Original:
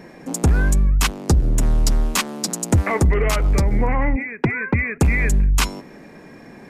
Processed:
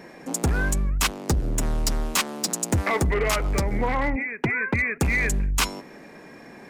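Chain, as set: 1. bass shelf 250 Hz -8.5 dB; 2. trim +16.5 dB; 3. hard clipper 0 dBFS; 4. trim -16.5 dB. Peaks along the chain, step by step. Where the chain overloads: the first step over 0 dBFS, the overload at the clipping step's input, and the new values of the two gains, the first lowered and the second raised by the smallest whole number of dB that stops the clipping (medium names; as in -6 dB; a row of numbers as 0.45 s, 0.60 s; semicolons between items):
-8.0 dBFS, +8.5 dBFS, 0.0 dBFS, -16.5 dBFS; step 2, 8.5 dB; step 2 +7.5 dB, step 4 -7.5 dB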